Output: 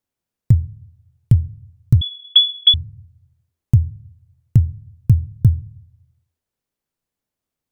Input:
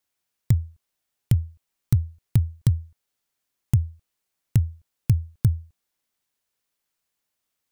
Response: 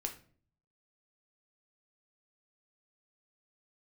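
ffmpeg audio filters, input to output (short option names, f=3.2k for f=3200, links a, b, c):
-filter_complex "[0:a]tiltshelf=f=690:g=7,asplit=2[a][b];[1:a]atrim=start_sample=2205,asetrate=35721,aresample=44100[c];[b][c]afir=irnorm=-1:irlink=0,volume=-13dB[d];[a][d]amix=inputs=2:normalize=0,asettb=1/sr,asplit=3[e][f][g];[e]atrim=end=2.014[h];[f]atrim=start=2.01:end=2.74,asetpts=PTS-STARTPTS,afade=t=in:d=0.004:c=qsin,afade=t=out:st=0.726:d=0.004:c=qsin,lowpass=f=3k:t=q:w=0.5098,lowpass=f=3k:t=q:w=0.6013,lowpass=f=3k:t=q:w=0.9,lowpass=f=3k:t=q:w=2.563,afreqshift=-3500[i];[g]atrim=start=2.736[j];[h][i]acrossfade=d=0.004:c1=hsin:c2=qsin[k];[k][j]acrossfade=d=0.004:c1=qsin:c2=hsin,volume=-1.5dB"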